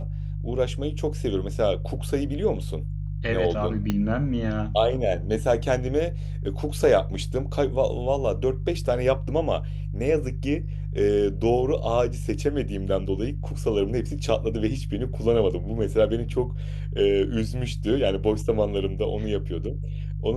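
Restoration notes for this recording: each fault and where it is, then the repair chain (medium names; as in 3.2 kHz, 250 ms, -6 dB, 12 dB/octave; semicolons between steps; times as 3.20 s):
hum 50 Hz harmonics 3 -30 dBFS
3.90 s: pop -12 dBFS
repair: de-click; de-hum 50 Hz, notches 3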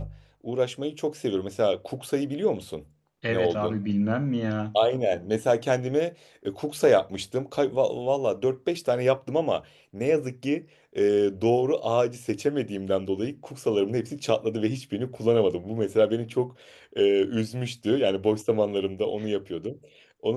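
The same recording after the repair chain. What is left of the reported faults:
3.90 s: pop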